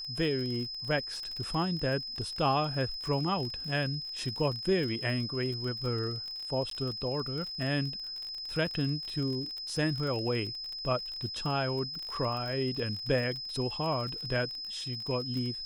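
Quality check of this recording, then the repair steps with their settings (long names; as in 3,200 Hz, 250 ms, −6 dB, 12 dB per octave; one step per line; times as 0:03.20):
surface crackle 37 per second −36 dBFS
whistle 5,100 Hz −37 dBFS
0:06.70–0:06.71: drop-out 13 ms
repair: click removal
notch filter 5,100 Hz, Q 30
repair the gap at 0:06.70, 13 ms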